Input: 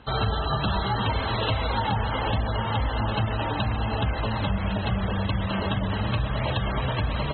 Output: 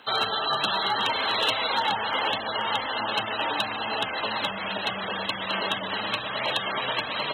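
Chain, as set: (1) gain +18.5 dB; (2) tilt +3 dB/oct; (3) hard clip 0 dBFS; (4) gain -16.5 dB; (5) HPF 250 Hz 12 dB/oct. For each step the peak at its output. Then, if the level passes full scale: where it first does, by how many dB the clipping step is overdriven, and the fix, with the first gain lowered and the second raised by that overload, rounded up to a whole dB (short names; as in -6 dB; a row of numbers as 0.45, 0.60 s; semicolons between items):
+7.5, +7.5, 0.0, -16.5, -13.5 dBFS; step 1, 7.5 dB; step 1 +10.5 dB, step 4 -8.5 dB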